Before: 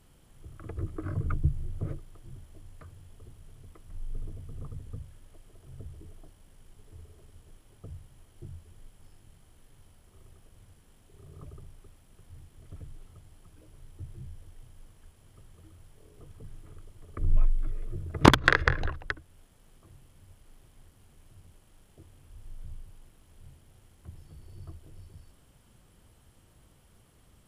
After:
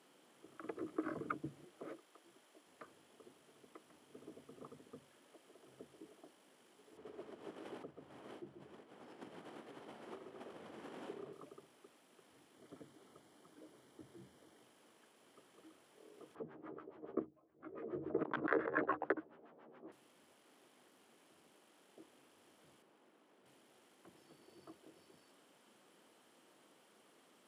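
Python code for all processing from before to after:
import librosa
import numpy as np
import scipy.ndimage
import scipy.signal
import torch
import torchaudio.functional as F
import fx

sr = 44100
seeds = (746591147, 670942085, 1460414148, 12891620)

y = fx.chain(x, sr, fx.highpass(hz=290.0, slope=6),
    fx.low_shelf(hz=390.0, db=-6.0), at=(1.64, 2.67))
y = fx.chain(y, sr, fx.lowpass(hz=1100.0, slope=6),
    fx.echo_multitap(ms=(49, 135), db=(-19.5, -6.5)),
    fx.env_flatten(amount_pct=100), at=(6.97, 11.33))
y = fx.chain(y, sr, fx.low_shelf(hz=320.0, db=6.0),
    fx.notch(hz=2600.0, q=6.4), at=(12.55, 14.63))
y = fx.chain(y, sr, fx.doubler(ms=13.0, db=-3.0),
    fx.filter_lfo_lowpass(shape='sine', hz=7.1, low_hz=430.0, high_hz=1600.0, q=1.2),
    fx.over_compress(threshold_db=-31.0, ratio=-1.0), at=(16.35, 19.92))
y = fx.chain(y, sr, fx.highpass(hz=160.0, slope=12),
    fx.high_shelf(hz=2800.0, db=-11.0), at=(22.82, 23.46))
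y = scipy.signal.sosfilt(scipy.signal.butter(4, 260.0, 'highpass', fs=sr, output='sos'), y)
y = fx.high_shelf(y, sr, hz=8400.0, db=-11.0)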